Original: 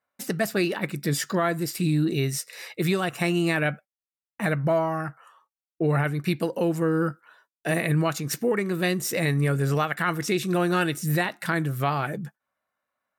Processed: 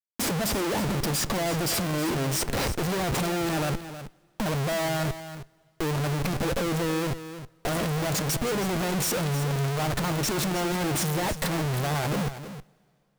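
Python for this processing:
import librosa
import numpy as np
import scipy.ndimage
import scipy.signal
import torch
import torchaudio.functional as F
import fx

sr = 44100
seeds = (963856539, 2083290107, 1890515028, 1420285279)

p1 = fx.band_shelf(x, sr, hz=2000.0, db=-13.0, octaves=1.7)
p2 = fx.schmitt(p1, sr, flips_db=-41.5)
p3 = p2 + fx.echo_single(p2, sr, ms=318, db=-12.0, dry=0)
y = fx.rev_double_slope(p3, sr, seeds[0], early_s=0.22, late_s=2.8, knee_db=-18, drr_db=19.5)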